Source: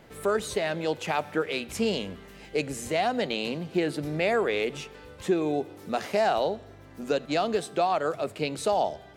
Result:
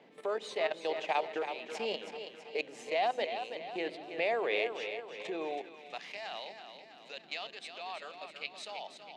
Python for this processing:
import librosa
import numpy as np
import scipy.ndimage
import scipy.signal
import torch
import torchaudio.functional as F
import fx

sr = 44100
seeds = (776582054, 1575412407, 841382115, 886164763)

y = scipy.signal.sosfilt(scipy.signal.butter(2, 3100.0, 'lowpass', fs=sr, output='sos'), x)
y = fx.peak_eq(y, sr, hz=1400.0, db=-12.0, octaves=0.63)
y = fx.hum_notches(y, sr, base_hz=50, count=7)
y = fx.level_steps(y, sr, step_db=15)
y = fx.echo_split(y, sr, split_hz=320.0, low_ms=133, high_ms=326, feedback_pct=52, wet_db=-8.5)
y = fx.filter_sweep_highpass(y, sr, from_hz=610.0, to_hz=1800.0, start_s=5.3, end_s=6.06, q=0.71)
y = fx.dmg_noise_band(y, sr, seeds[0], low_hz=160.0, high_hz=480.0, level_db=-68.0)
y = F.gain(torch.from_numpy(y), 3.5).numpy()